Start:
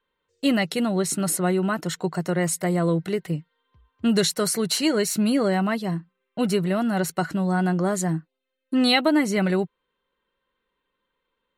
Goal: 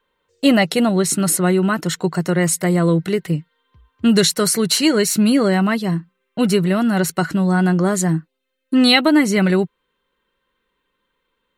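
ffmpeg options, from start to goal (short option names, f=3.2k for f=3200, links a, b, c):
-af "asetnsamples=n=441:p=0,asendcmd='0.89 equalizer g -4.5',equalizer=f=690:w=1.6:g=3,volume=7dB"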